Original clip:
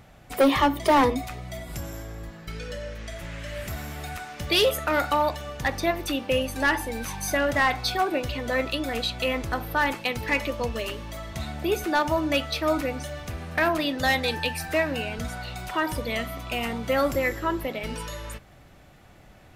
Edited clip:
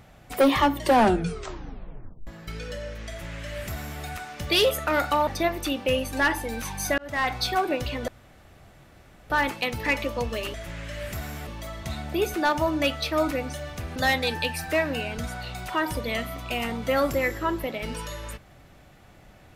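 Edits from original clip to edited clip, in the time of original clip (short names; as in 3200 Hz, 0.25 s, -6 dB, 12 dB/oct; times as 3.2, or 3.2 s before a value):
0.73 tape stop 1.54 s
3.09–4.02 copy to 10.97
5.27–5.7 cut
7.41–7.77 fade in
8.51–9.73 room tone
13.46–13.97 cut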